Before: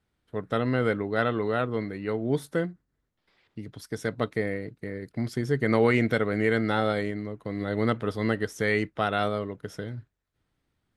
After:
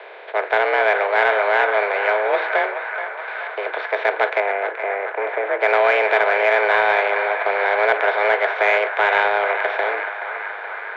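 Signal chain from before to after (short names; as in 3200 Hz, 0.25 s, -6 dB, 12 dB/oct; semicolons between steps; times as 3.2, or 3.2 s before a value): per-bin compression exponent 0.4; dynamic EQ 1200 Hz, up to +4 dB, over -35 dBFS, Q 0.76; mistuned SSB +200 Hz 210–3500 Hz; in parallel at -11.5 dB: soft clip -15 dBFS, distortion -13 dB; 4.4–5.61 on the sum: air absorption 490 m; on a send: narrowing echo 0.426 s, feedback 80%, band-pass 1400 Hz, level -7.5 dB; on the sum: attack slew limiter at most 590 dB/s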